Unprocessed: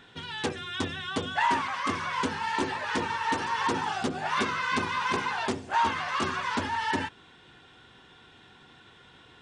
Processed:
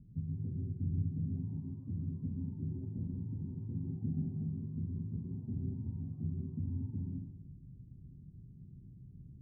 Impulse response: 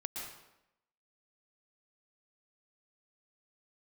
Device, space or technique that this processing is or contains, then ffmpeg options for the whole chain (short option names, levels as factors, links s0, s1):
club heard from the street: -filter_complex "[0:a]alimiter=level_in=1.19:limit=0.0631:level=0:latency=1:release=124,volume=0.841,lowpass=f=170:w=0.5412,lowpass=f=170:w=1.3066[s0];[1:a]atrim=start_sample=2205[s1];[s0][s1]afir=irnorm=-1:irlink=0,volume=4.22"